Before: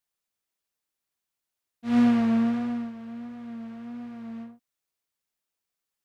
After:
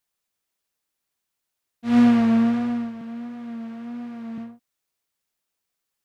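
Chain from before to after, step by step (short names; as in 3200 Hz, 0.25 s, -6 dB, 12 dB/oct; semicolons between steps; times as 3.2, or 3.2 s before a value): 3.01–4.38 HPF 140 Hz 24 dB/oct; gain +4.5 dB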